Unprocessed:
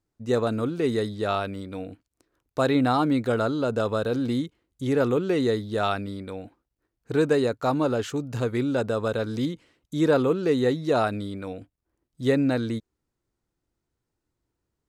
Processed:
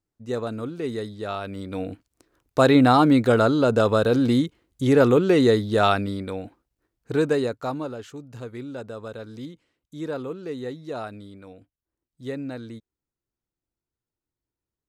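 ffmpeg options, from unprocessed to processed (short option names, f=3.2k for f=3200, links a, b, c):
-af "volume=6dB,afade=t=in:st=1.4:d=0.49:silence=0.298538,afade=t=out:st=5.89:d=1.52:silence=0.446684,afade=t=out:st=7.41:d=0.54:silence=0.354813"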